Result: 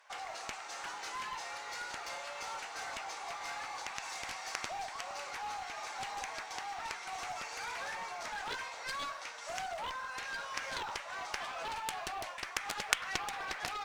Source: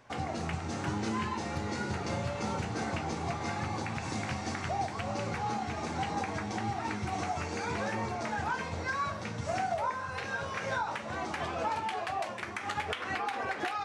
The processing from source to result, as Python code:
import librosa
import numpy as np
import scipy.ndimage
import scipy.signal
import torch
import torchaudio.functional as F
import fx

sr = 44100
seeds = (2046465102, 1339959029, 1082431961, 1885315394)

y = scipy.signal.sosfilt(scipy.signal.bessel(4, 980.0, 'highpass', norm='mag', fs=sr, output='sos'), x)
y = fx.mod_noise(y, sr, seeds[0], snr_db=34)
y = fx.cheby_harmonics(y, sr, harmonics=(3, 4), levels_db=(-8, -34), full_scale_db=-19.0)
y = y * 10.0 ** (14.5 / 20.0)